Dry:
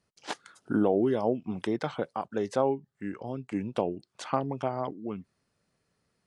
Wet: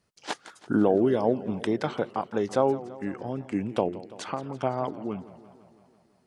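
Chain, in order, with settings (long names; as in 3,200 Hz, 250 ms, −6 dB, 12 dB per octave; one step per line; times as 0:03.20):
0:03.88–0:04.61: downward compressor 2 to 1, threshold −37 dBFS, peak gain reduction 9 dB
feedback echo with a swinging delay time 167 ms, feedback 65%, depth 181 cents, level −17 dB
level +3 dB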